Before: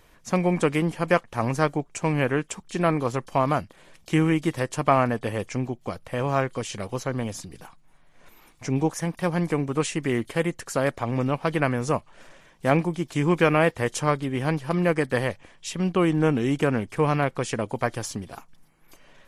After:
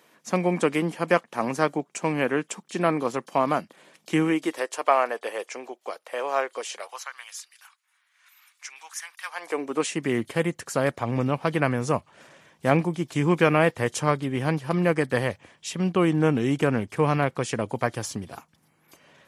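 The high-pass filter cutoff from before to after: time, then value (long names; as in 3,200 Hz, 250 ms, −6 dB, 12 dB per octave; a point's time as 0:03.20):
high-pass filter 24 dB per octave
0:04.20 180 Hz
0:04.72 420 Hz
0:06.68 420 Hz
0:07.17 1,300 Hz
0:09.25 1,300 Hz
0:09.57 340 Hz
0:10.39 80 Hz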